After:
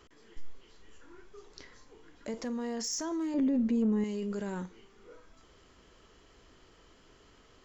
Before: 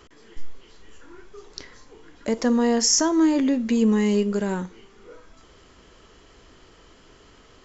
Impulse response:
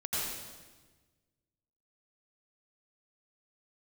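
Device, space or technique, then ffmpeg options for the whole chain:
clipper into limiter: -filter_complex "[0:a]asoftclip=type=hard:threshold=0.211,alimiter=limit=0.0891:level=0:latency=1:release=11,asettb=1/sr,asplit=3[s0][s1][s2];[s0]atrim=end=3.344[s3];[s1]atrim=start=3.34:end=4.04,asetpts=PTS-STARTPTS,afade=t=in:d=0.004:c=qsin,afade=t=out:st=0.696:d=0.004:c=qsin,tiltshelf=f=1200:g=7.5[s4];[s2]atrim=start=4.036[s5];[s3][s4]acrossfade=d=0.004:c1=hsin:c2=qsin[s6];[s6][s5]acrossfade=d=0.004:c1=qsin:c2=hsin,volume=0.398"

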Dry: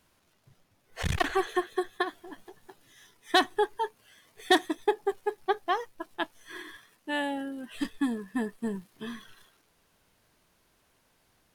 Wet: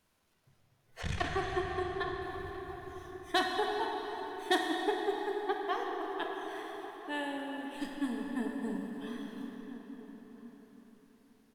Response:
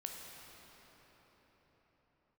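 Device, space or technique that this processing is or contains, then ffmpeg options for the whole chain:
cathedral: -filter_complex "[1:a]atrim=start_sample=2205[s0];[0:a][s0]afir=irnorm=-1:irlink=0,asettb=1/sr,asplit=3[s1][s2][s3];[s1]atrim=end=1.014[s4];[s2]atrim=start=1.01:end=2.22,asetpts=PTS-STARTPTS,afade=t=in:d=0.004:c=qsin,afade=t=out:st=1.206:d=0.004:c=qsin,lowpass=7200[s5];[s3]atrim=start=2.216[s6];[s4][s5]acrossfade=d=0.004:c1=hsin:c2=qsin[s7];[s7][s6]acrossfade=d=0.004:c1=qsin:c2=hsin,asplit=2[s8][s9];[s9]adelay=1341,volume=0.2,highshelf=f=4000:g=-30.2[s10];[s8][s10]amix=inputs=2:normalize=0,volume=0.708"

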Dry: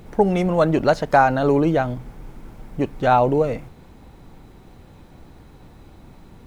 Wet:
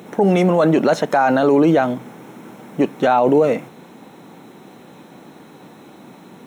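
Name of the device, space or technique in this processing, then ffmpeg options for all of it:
PA system with an anti-feedback notch: -af "highpass=f=180:w=0.5412,highpass=f=180:w=1.3066,asuperstop=centerf=4700:order=4:qfactor=6.3,alimiter=limit=0.188:level=0:latency=1:release=16,volume=2.51"

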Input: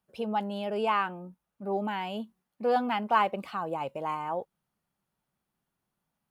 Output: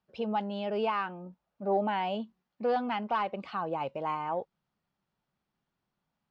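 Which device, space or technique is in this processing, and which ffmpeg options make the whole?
soft clipper into limiter: -filter_complex "[0:a]asoftclip=type=tanh:threshold=0.188,alimiter=limit=0.0841:level=0:latency=1:release=382,asettb=1/sr,asplit=3[s0][s1][s2];[s0]atrim=end=1.264[s3];[s1]atrim=start=1.26:end=2.15,asetpts=PTS-STARTPTS,afade=t=in:d=0.004:c=qsin,afade=t=out:st=0.886:d=0.004:c=qsin,equalizer=f=640:w=1.6:g=7[s4];[s2]atrim=start=2.146[s5];[s3][s4]acrossfade=d=0.004:c1=hsin:c2=qsin[s6];[s6][s5]acrossfade=d=0.004:c1=qsin:c2=hsin,lowpass=f=5500:w=0.5412,lowpass=f=5500:w=1.3066"

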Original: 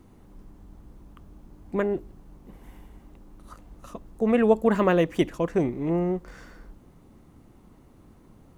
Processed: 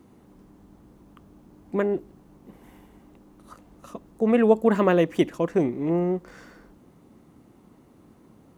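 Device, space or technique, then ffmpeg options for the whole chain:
filter by subtraction: -filter_complex "[0:a]asplit=2[s0][s1];[s1]lowpass=240,volume=-1[s2];[s0][s2]amix=inputs=2:normalize=0"

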